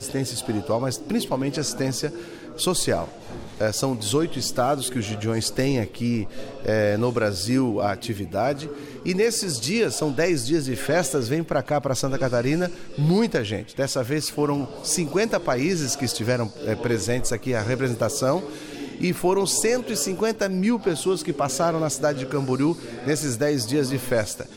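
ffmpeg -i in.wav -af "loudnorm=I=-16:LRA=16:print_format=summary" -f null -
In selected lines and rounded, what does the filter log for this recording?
Input Integrated:    -24.0 LUFS
Input True Peak:      -8.6 dBTP
Input LRA:             2.1 LU
Input Threshold:     -34.2 LUFS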